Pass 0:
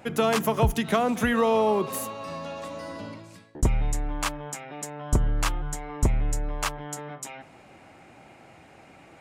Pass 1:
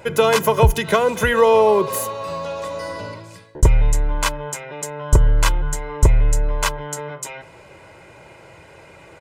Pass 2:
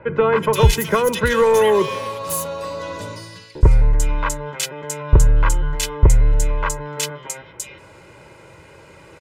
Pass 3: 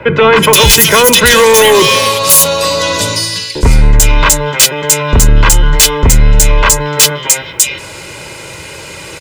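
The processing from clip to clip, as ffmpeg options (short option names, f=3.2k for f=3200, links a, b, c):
-af "aecho=1:1:2:0.7,volume=6dB"
-filter_complex "[0:a]equalizer=f=710:t=o:w=0.29:g=-10.5,acrossover=split=350|1400|2800[a][b][c][d];[b]asoftclip=type=hard:threshold=-15.5dB[e];[a][e][c][d]amix=inputs=4:normalize=0,acrossover=split=2200[f][g];[g]adelay=370[h];[f][h]amix=inputs=2:normalize=0,volume=1.5dB"
-filter_complex "[0:a]acrossover=split=160|930|2700[a][b][c][d];[d]aeval=exprs='0.299*sin(PI/2*2.82*val(0)/0.299)':c=same[e];[a][b][c][e]amix=inputs=4:normalize=0,apsyclip=16dB,volume=-2dB"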